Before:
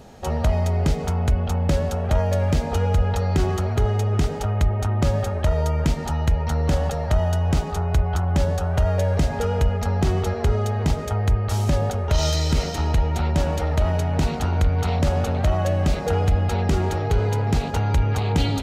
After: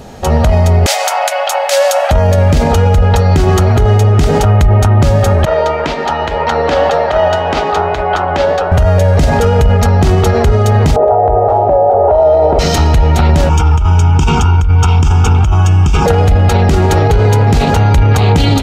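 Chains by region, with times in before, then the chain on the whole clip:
0.86–2.11 rippled Chebyshev high-pass 530 Hz, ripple 3 dB + high shelf 3300 Hz +11 dB
5.45–8.72 three-band isolator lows -22 dB, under 320 Hz, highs -22 dB, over 4600 Hz + flange 1.9 Hz, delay 3.5 ms, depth 9.2 ms, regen +80%
10.96–12.59 synth low-pass 730 Hz, resonance Q 4.1 + resonant low shelf 300 Hz -12.5 dB, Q 1.5
13.49–16.06 comb 2.2 ms, depth 44% + negative-ratio compressor -26 dBFS + fixed phaser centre 2800 Hz, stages 8
whole clip: AGC; maximiser +13.5 dB; gain -1 dB

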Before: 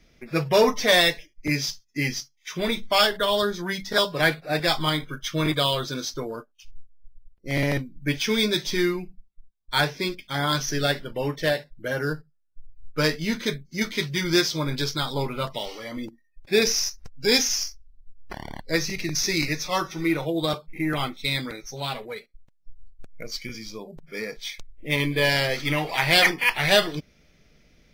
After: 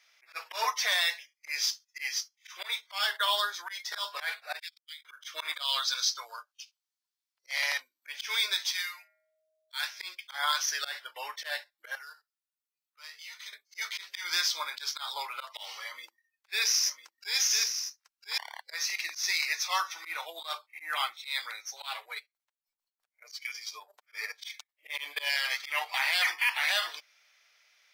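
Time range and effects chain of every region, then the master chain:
4.59–5.05 inverse Chebyshev band-stop 300–640 Hz, stop band 80 dB + compressor 4:1, threshold -38 dBFS + core saturation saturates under 390 Hz
5.62–7.8 HPF 510 Hz + bell 4800 Hz +8 dB 1 oct
8.71–9.99 passive tone stack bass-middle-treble 10-0-10 + de-hum 108 Hz, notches 23 + whine 630 Hz -62 dBFS
11.95–13.53 HPF 1200 Hz 6 dB/oct + notch 1600 Hz, Q 7.5 + compressor 3:1, threshold -44 dBFS
15.86–18.38 bell 720 Hz -10.5 dB 0.2 oct + echo 1 s -9 dB
22.16–25.95 comb 6.7 ms, depth 66% + transient shaper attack +2 dB, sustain -10 dB
whole clip: inverse Chebyshev high-pass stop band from 150 Hz, stop band 80 dB; limiter -16.5 dBFS; auto swell 0.13 s

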